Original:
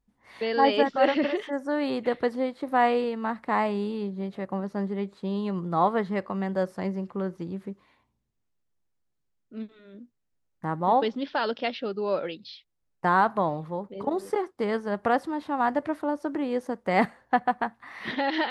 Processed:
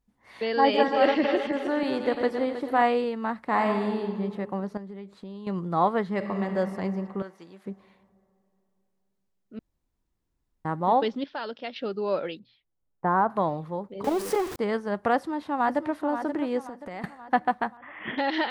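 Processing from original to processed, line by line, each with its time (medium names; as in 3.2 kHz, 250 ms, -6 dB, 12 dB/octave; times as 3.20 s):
0.56–2.82 s: backward echo that repeats 159 ms, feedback 62%, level -7.5 dB
3.46–4.14 s: reverb throw, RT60 1.6 s, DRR 3 dB
4.77–5.47 s: compression 12:1, threshold -36 dBFS
6.10–6.56 s: reverb throw, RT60 3 s, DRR 3.5 dB
7.22–7.66 s: high-pass 1.3 kHz 6 dB/octave
9.59–10.65 s: room tone
11.24–11.76 s: gain -7 dB
12.39–13.30 s: low-pass 1.2 kHz
14.04–14.56 s: jump at every zero crossing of -30.5 dBFS
15.15–15.95 s: echo throw 530 ms, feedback 50%, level -9 dB
16.62–17.04 s: compression, threshold -35 dBFS
17.77–18.18 s: Chebyshev low-pass 3.4 kHz, order 10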